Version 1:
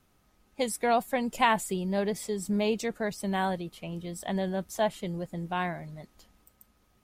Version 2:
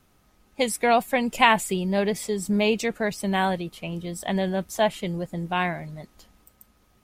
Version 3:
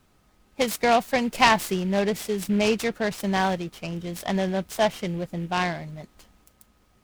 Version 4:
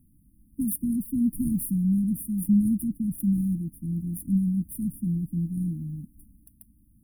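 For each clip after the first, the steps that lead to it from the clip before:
dynamic equaliser 2,500 Hz, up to +6 dB, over −51 dBFS, Q 2; level +5 dB
short delay modulated by noise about 2,100 Hz, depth 0.032 ms
linear-phase brick-wall band-stop 320–9,100 Hz; level +4 dB

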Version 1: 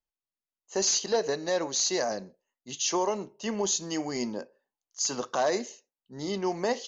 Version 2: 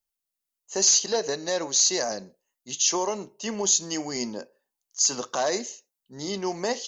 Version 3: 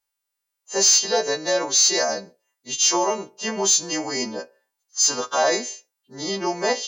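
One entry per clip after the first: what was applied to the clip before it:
high-shelf EQ 5,100 Hz +12 dB
every partial snapped to a pitch grid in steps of 2 semitones; mid-hump overdrive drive 8 dB, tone 1,200 Hz, clips at 0 dBFS; level +5.5 dB

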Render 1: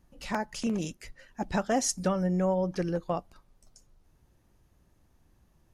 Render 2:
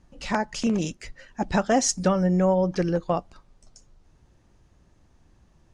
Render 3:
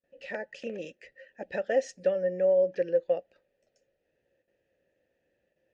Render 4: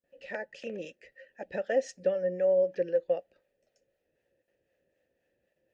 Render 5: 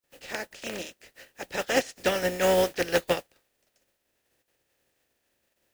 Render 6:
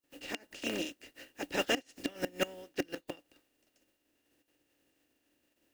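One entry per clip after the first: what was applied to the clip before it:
low-pass filter 8,200 Hz 24 dB per octave; level +6 dB
noise gate with hold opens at −50 dBFS; formant filter e; level +3.5 dB
two-band tremolo in antiphase 3.9 Hz, depth 50%, crossover 550 Hz; level +1 dB
compressing power law on the bin magnitudes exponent 0.4; flanger 0.64 Hz, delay 2.2 ms, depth 1.1 ms, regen −70%; level +7 dB
gate with flip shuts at −16 dBFS, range −25 dB; hollow resonant body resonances 290/2,800 Hz, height 15 dB, ringing for 60 ms; level −3.5 dB

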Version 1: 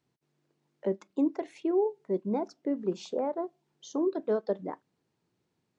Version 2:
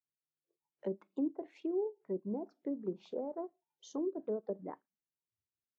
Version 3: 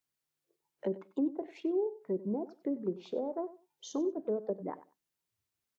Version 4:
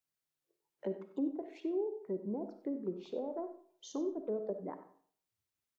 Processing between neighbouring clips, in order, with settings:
noise reduction from a noise print of the clip's start 24 dB; treble cut that deepens with the level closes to 540 Hz, closed at −25.5 dBFS; level −7 dB
in parallel at +1.5 dB: downward compressor, threshold −45 dBFS, peak gain reduction 14.5 dB; on the sum: repeating echo 95 ms, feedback 17%, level −16 dB; level +1 dB
comb and all-pass reverb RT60 0.53 s, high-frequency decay 0.7×, pre-delay 15 ms, DRR 9 dB; level −4 dB

